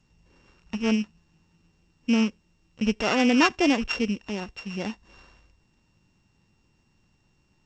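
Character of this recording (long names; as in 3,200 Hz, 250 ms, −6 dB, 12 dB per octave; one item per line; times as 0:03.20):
a buzz of ramps at a fixed pitch in blocks of 16 samples
G.722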